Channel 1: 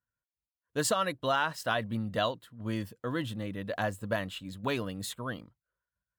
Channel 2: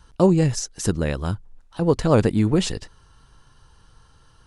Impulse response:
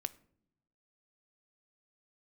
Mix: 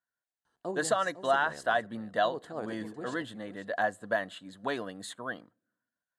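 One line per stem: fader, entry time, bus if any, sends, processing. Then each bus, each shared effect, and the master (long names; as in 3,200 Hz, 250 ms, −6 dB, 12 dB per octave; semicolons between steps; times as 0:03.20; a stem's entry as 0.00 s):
−3.5 dB, 0.00 s, send −11.5 dB, no echo send, no processing
−19.0 dB, 0.45 s, send −3.5 dB, echo send −13.5 dB, automatic ducking −13 dB, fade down 1.05 s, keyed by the first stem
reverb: on, pre-delay 3 ms
echo: single-tap delay 503 ms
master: loudspeaker in its box 230–9,800 Hz, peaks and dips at 710 Hz +8 dB, 1,700 Hz +8 dB, 2,500 Hz −9 dB, 5,500 Hz −8 dB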